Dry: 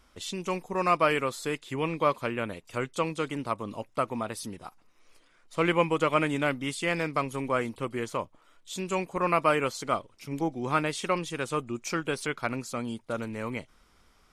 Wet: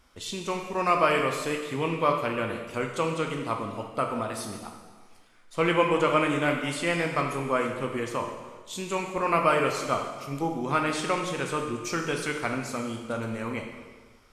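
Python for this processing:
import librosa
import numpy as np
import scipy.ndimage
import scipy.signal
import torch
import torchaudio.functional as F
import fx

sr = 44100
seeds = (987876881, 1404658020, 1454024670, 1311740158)

y = fx.rev_plate(x, sr, seeds[0], rt60_s=1.4, hf_ratio=0.95, predelay_ms=0, drr_db=2.0)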